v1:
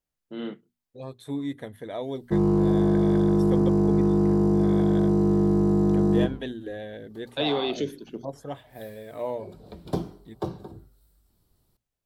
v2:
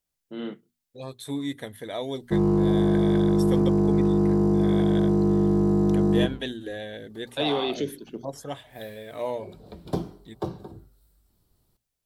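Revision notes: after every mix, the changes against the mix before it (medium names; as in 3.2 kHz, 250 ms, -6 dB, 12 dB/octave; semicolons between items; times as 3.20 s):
second voice: add treble shelf 2.2 kHz +11 dB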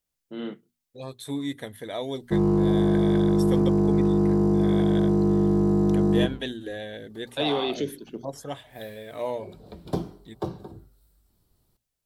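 no change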